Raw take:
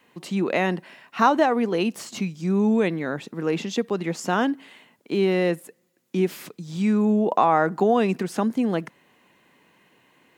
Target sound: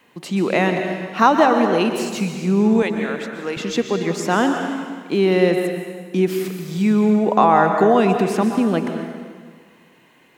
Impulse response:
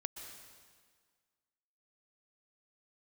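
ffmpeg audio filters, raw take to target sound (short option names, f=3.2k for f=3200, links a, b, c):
-filter_complex "[0:a]asettb=1/sr,asplit=3[a][b][c];[a]atrim=end=2.824[d];[b]atrim=start=2.82:end=3.57,asetpts=PTS-STARTPTS,afade=t=in:d=0.004:c=qsin,afade=t=out:st=0.746:d=0.004:c=qsin,highpass=f=810:p=1[e];[c]atrim=start=3.566[f];[d][e]acrossfade=d=0.004:c1=hsin:c2=qsin[g];[g][f]acrossfade=d=0.004:c1=qsin:c2=hsin[h];[1:a]atrim=start_sample=2205[i];[h][i]afir=irnorm=-1:irlink=0,volume=7dB"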